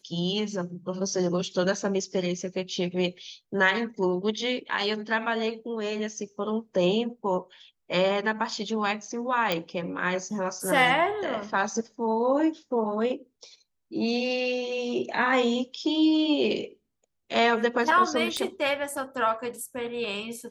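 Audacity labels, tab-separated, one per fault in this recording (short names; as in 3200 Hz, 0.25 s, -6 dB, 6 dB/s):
9.520000	9.520000	pop -12 dBFS
18.370000	18.370000	pop -15 dBFS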